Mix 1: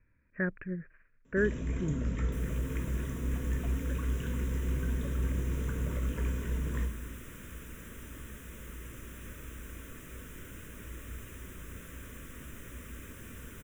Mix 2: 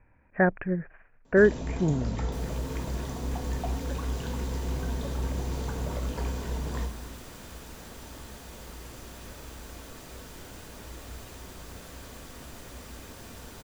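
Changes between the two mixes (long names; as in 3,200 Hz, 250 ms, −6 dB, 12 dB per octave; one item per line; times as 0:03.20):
speech +7.0 dB
master: remove phaser with its sweep stopped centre 1,900 Hz, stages 4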